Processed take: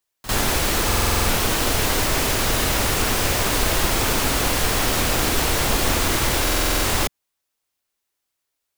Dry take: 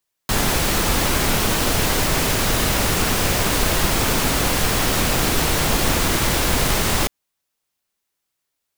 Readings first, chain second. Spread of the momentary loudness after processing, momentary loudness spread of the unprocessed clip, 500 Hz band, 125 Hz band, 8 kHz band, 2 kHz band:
0 LU, 0 LU, -1.0 dB, -2.5 dB, -1.0 dB, -1.0 dB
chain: peaking EQ 170 Hz -6 dB 0.66 oct; pre-echo 50 ms -15.5 dB; buffer glitch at 0.86/6.43 s, samples 2048, times 8; trim -1 dB

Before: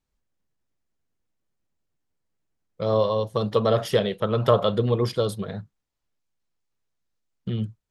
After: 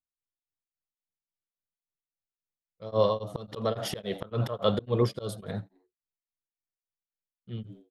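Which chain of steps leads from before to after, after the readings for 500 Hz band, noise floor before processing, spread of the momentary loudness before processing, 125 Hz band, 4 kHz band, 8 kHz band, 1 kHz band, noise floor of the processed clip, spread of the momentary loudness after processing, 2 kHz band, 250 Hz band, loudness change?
-7.0 dB, -81 dBFS, 12 LU, -6.5 dB, -5.5 dB, -2.0 dB, -7.0 dB, under -85 dBFS, 14 LU, -7.5 dB, -6.0 dB, -6.5 dB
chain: gate with hold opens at -41 dBFS; frequency-shifting echo 86 ms, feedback 33%, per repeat +86 Hz, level -20 dB; slow attack 178 ms; tremolo of two beating tones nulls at 3.6 Hz

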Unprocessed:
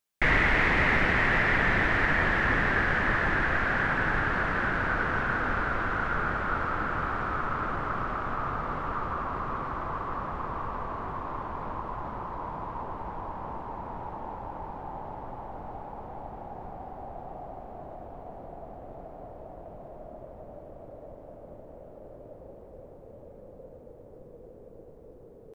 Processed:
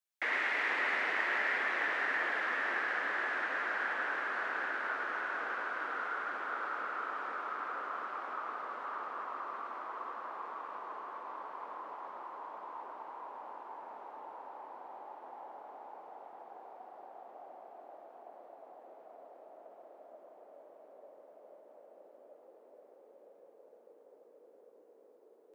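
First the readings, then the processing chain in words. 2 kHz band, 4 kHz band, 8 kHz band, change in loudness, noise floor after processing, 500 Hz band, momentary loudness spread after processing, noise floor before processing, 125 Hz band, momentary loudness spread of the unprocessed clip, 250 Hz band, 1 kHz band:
-7.5 dB, -7.5 dB, no reading, -8.0 dB, -61 dBFS, -10.0 dB, 23 LU, -49 dBFS, under -40 dB, 22 LU, -18.5 dB, -7.5 dB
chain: Bessel high-pass 520 Hz, order 6; frequency shift -15 Hz; two-band feedback delay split 1.7 kHz, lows 473 ms, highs 104 ms, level -4 dB; trim -9 dB

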